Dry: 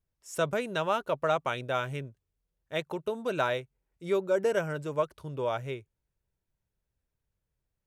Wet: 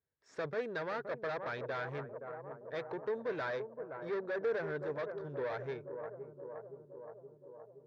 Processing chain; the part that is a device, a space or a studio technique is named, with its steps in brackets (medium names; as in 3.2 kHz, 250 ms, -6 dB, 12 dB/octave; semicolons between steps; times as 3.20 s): analogue delay pedal into a guitar amplifier (bucket-brigade echo 520 ms, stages 4096, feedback 67%, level -12 dB; valve stage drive 33 dB, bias 0.4; cabinet simulation 110–4400 Hz, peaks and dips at 190 Hz -6 dB, 450 Hz +8 dB, 1.7 kHz +9 dB, 2.9 kHz -10 dB); trim -3.5 dB